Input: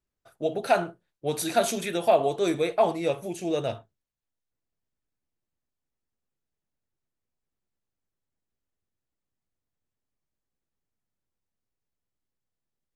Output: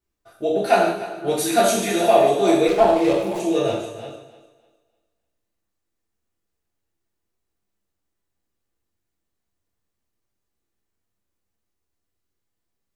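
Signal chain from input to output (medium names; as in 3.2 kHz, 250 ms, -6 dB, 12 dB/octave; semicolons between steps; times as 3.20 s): chunks repeated in reverse 257 ms, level -10.5 dB; on a send: thinning echo 301 ms, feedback 27%, high-pass 160 Hz, level -15 dB; on the sum: gated-style reverb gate 230 ms falling, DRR -5.5 dB; 2.68–3.40 s: sliding maximum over 5 samples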